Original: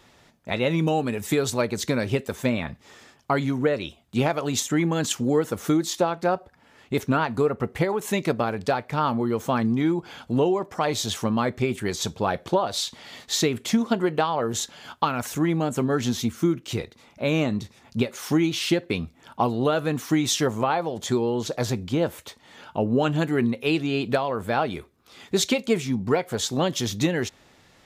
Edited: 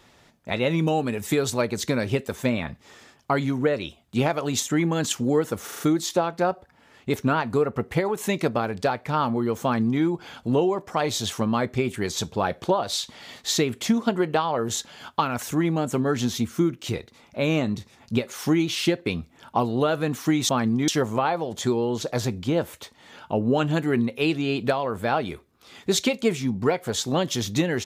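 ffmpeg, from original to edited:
-filter_complex "[0:a]asplit=7[a][b][c][d][e][f][g];[a]atrim=end=5.682[h];[b]atrim=start=5.638:end=5.682[i];[c]atrim=start=5.638:end=5.682[j];[d]atrim=start=5.638:end=5.682[k];[e]atrim=start=5.638:end=20.332[l];[f]atrim=start=9.468:end=9.862[m];[g]atrim=start=20.328[n];[h][i]acrossfade=d=0.004:c1=hsin:c2=hsin[o];[o][j]acrossfade=d=0.004:c1=hsin:c2=hsin[p];[p][k]acrossfade=d=0.004:c1=hsin:c2=hsin[q];[q][l]acrossfade=d=0.004:c1=hsin:c2=hsin[r];[r][m]acrossfade=d=0.004:c1=hsin:c2=hsin[s];[s][n]acrossfade=d=0.004:c1=hsin:c2=hsin"

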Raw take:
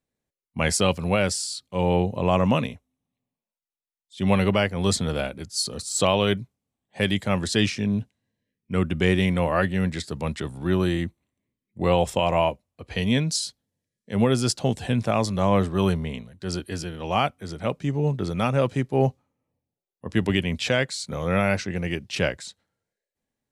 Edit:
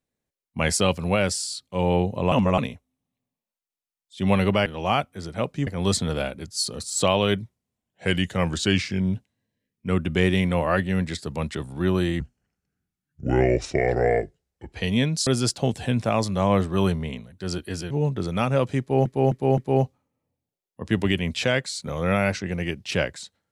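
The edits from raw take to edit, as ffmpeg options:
-filter_complex "[0:a]asplit=14[a][b][c][d][e][f][g][h][i][j][k][l][m][n];[a]atrim=end=2.322[o];[b]atrim=start=2.318:end=2.582,asetpts=PTS-STARTPTS,areverse[p];[c]atrim=start=2.578:end=4.662[q];[d]atrim=start=16.918:end=17.932[r];[e]atrim=start=4.658:end=6.414[s];[f]atrim=start=6.41:end=8,asetpts=PTS-STARTPTS,asetrate=40572,aresample=44100,atrim=end_sample=76216,asetpts=PTS-STARTPTS[t];[g]atrim=start=7.996:end=11.054[u];[h]atrim=start=11.05:end=12.87,asetpts=PTS-STARTPTS,asetrate=31752,aresample=44100[v];[i]atrim=start=12.866:end=13.412[w];[j]atrim=start=14.278:end=16.922[x];[k]atrim=start=17.928:end=19.082[y];[l]atrim=start=18.818:end=19.082[z];[m]atrim=start=18.818:end=19.082[aa];[n]atrim=start=18.818[ab];[o][p]acrossfade=d=0.004:c1=hsin:c2=hsin[ac];[ac][q]acrossfade=d=0.004:c1=hsin:c2=hsin[ad];[ad][r]acrossfade=d=0.004:c1=hsin:c2=hsin[ae];[ae][s]acrossfade=d=0.004:c1=hsin:c2=hsin[af];[af][t]acrossfade=d=0.004:c1=hsin:c2=hsin[ag];[ag][u]acrossfade=d=0.004:c1=hsin:c2=hsin[ah];[ah][v]acrossfade=d=0.004:c1=hsin:c2=hsin[ai];[ai][w]acrossfade=d=0.004:c1=hsin:c2=hsin[aj];[aj][x]acrossfade=d=0.004:c1=hsin:c2=hsin[ak];[ak][y]acrossfade=d=0.004:c1=hsin:c2=hsin[al];[al][z]acrossfade=d=0.004:c1=hsin:c2=hsin[am];[am][aa]acrossfade=d=0.004:c1=hsin:c2=hsin[an];[an][ab]acrossfade=d=0.004:c1=hsin:c2=hsin"

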